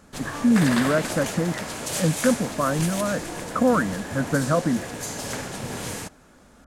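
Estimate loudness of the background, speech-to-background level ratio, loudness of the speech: −30.5 LKFS, 6.5 dB, −24.0 LKFS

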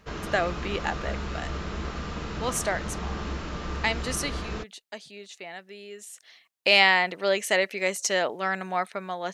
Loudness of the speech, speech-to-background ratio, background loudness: −25.5 LKFS, 9.0 dB, −34.5 LKFS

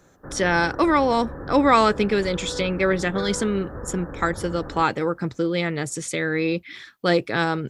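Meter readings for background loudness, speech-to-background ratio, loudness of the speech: −36.0 LKFS, 13.5 dB, −22.5 LKFS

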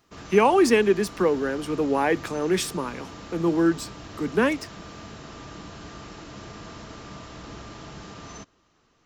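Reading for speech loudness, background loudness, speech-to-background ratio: −23.0 LKFS, −41.0 LKFS, 18.0 dB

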